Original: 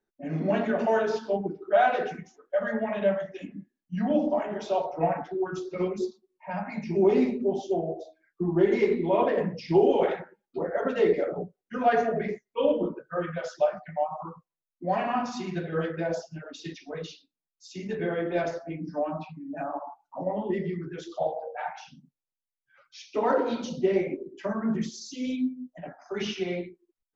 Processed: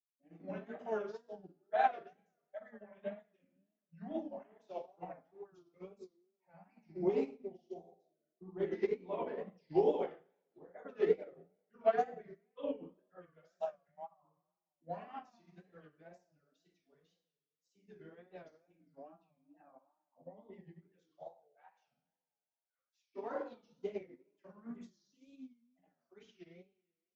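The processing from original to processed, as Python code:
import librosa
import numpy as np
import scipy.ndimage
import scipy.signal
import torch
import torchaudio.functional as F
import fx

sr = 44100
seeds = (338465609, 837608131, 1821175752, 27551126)

y = fx.rev_double_slope(x, sr, seeds[0], early_s=0.81, late_s=2.8, knee_db=-18, drr_db=4.5)
y = fx.wow_flutter(y, sr, seeds[1], rate_hz=2.1, depth_cents=130.0)
y = fx.upward_expand(y, sr, threshold_db=-34.0, expansion=2.5)
y = F.gain(torch.from_numpy(y), -8.0).numpy()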